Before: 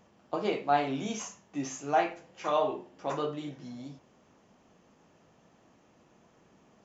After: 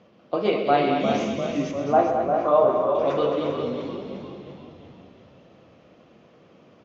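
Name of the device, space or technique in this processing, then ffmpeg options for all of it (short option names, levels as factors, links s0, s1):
frequency-shifting delay pedal into a guitar cabinet: -filter_complex "[0:a]asplit=8[s0][s1][s2][s3][s4][s5][s6][s7];[s1]adelay=349,afreqshift=-52,volume=0.398[s8];[s2]adelay=698,afreqshift=-104,volume=0.232[s9];[s3]adelay=1047,afreqshift=-156,volume=0.133[s10];[s4]adelay=1396,afreqshift=-208,volume=0.0776[s11];[s5]adelay=1745,afreqshift=-260,volume=0.0452[s12];[s6]adelay=2094,afreqshift=-312,volume=0.026[s13];[s7]adelay=2443,afreqshift=-364,volume=0.0151[s14];[s0][s8][s9][s10][s11][s12][s13][s14]amix=inputs=8:normalize=0,highpass=110,equalizer=f=530:t=q:w=4:g=5,equalizer=f=880:t=q:w=4:g=-8,equalizer=f=1700:t=q:w=4:g=-5,lowpass=f=4500:w=0.5412,lowpass=f=4500:w=1.3066,asettb=1/sr,asplit=3[s15][s16][s17];[s15]atrim=end=1.714[s18];[s16]atrim=start=1.71:end=2.95,asetpts=PTS-STARTPTS,afade=t=in:d=0.004:c=qsin,afade=t=out:st=1.236:d=0.004:c=qsin,highshelf=f=1600:t=q:w=1.5:g=-11.5[s19];[s17]atrim=start=2.946[s20];[s18][s19]acrossfade=d=0.004:c1=hsin:c2=qsin[s21];[s21][s20]acrossfade=d=0.004:c1=qsin:c2=hsin,aecho=1:1:127|215|397:0.335|0.422|0.355,volume=2.24"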